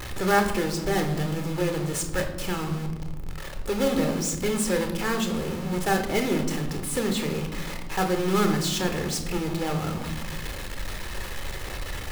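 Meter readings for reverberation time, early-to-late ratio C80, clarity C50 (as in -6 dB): 1.1 s, 11.0 dB, 8.5 dB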